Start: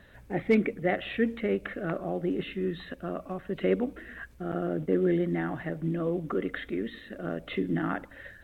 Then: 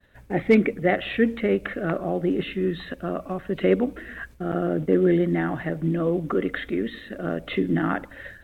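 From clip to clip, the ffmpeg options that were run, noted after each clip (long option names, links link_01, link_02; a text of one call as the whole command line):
ffmpeg -i in.wav -af "agate=range=-33dB:threshold=-47dB:ratio=3:detection=peak,volume=6dB" out.wav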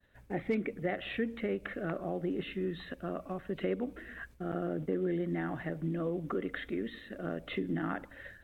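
ffmpeg -i in.wav -af "acompressor=threshold=-22dB:ratio=2.5,volume=-8.5dB" out.wav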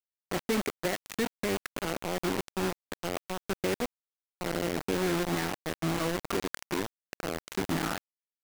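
ffmpeg -i in.wav -filter_complex "[0:a]asplit=2[link_01][link_02];[link_02]acrusher=bits=4:mode=log:mix=0:aa=0.000001,volume=-12dB[link_03];[link_01][link_03]amix=inputs=2:normalize=0,aecho=1:1:515:0.1,acrusher=bits=4:mix=0:aa=0.000001" out.wav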